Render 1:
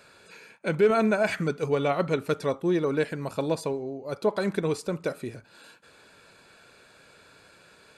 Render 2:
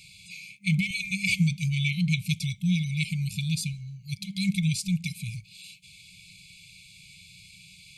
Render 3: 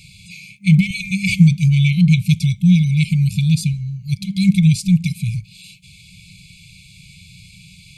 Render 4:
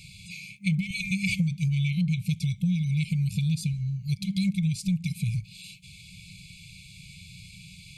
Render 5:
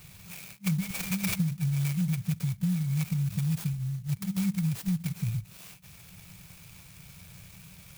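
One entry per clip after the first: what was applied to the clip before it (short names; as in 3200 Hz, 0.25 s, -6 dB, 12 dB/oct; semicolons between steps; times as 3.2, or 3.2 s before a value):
FFT band-reject 200–2100 Hz; gain +8.5 dB
low shelf 390 Hz +10.5 dB; gain +4.5 dB
compressor 6:1, threshold -20 dBFS, peak gain reduction 14 dB; gain -3.5 dB
clock jitter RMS 0.078 ms; gain -2.5 dB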